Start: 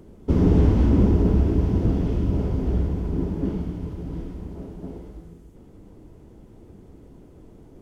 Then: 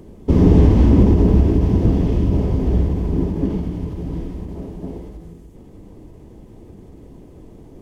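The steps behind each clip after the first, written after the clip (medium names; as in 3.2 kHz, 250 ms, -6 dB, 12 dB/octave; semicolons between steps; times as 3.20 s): band-stop 1.4 kHz, Q 5.8; endings held to a fixed fall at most 110 dB/s; trim +6 dB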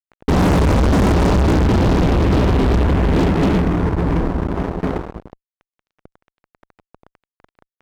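four-pole ladder low-pass 1.2 kHz, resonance 50%; level-controlled noise filter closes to 920 Hz, open at -19 dBFS; fuzz box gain 37 dB, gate -41 dBFS; trim +1 dB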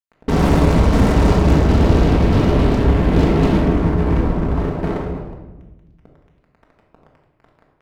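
simulated room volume 650 m³, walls mixed, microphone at 1.6 m; trim -4 dB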